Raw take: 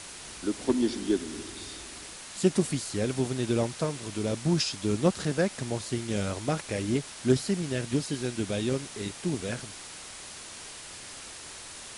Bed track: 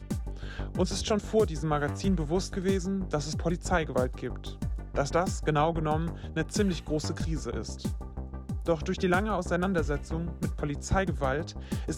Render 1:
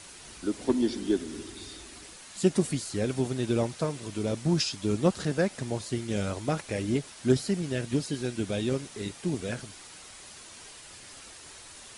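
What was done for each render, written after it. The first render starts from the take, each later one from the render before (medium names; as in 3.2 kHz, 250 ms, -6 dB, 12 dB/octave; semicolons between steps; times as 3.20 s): noise reduction 6 dB, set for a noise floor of -44 dBFS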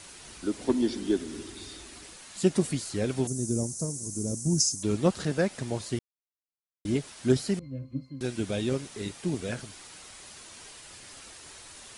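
3.27–4.83 s: FFT filter 240 Hz 0 dB, 3.3 kHz -27 dB, 6.1 kHz +12 dB; 5.99–6.85 s: mute; 7.59–8.21 s: pitch-class resonator C, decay 0.19 s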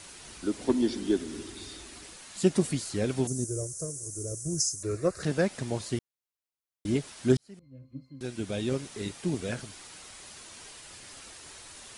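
3.44–5.23 s: static phaser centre 860 Hz, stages 6; 7.37–8.89 s: fade in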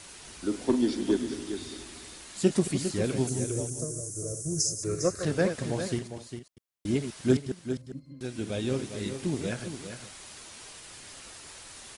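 chunks repeated in reverse 103 ms, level -9.5 dB; on a send: delay 403 ms -9 dB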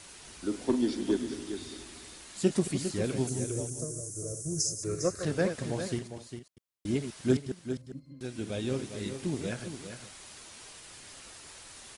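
trim -2.5 dB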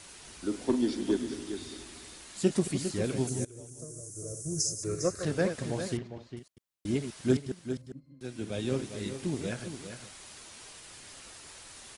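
3.45–4.59 s: fade in, from -18.5 dB; 5.97–6.37 s: distance through air 210 m; 7.92–8.82 s: three bands expanded up and down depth 40%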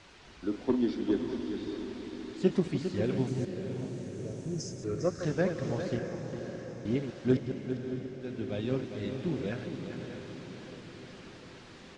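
distance through air 190 m; echo that smears into a reverb 611 ms, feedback 60%, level -8 dB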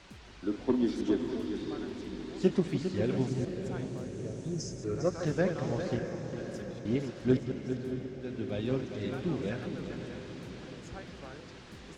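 add bed track -19.5 dB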